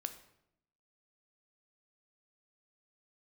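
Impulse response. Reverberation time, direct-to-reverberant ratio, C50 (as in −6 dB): 0.80 s, 8.0 dB, 11.5 dB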